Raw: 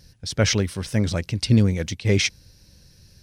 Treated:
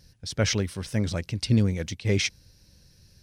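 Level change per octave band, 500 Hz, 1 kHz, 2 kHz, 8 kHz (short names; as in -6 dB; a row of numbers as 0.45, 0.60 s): -4.5, -4.5, -4.5, -4.5 dB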